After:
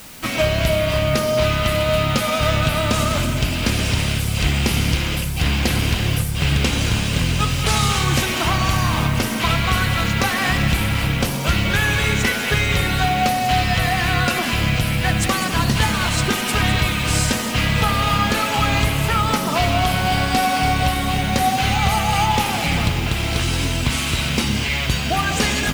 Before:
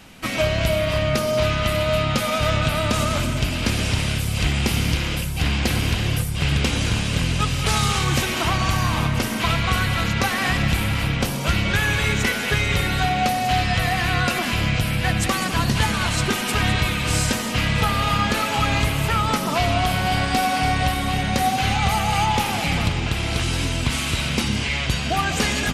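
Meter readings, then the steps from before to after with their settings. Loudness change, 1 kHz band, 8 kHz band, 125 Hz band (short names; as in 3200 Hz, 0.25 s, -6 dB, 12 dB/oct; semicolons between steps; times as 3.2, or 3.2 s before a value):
+2.5 dB, +2.0 dB, +2.5 dB, +2.0 dB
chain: de-hum 98.02 Hz, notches 27; in parallel at -2.5 dB: requantised 6-bit, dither triangular; on the sum: gain -2.5 dB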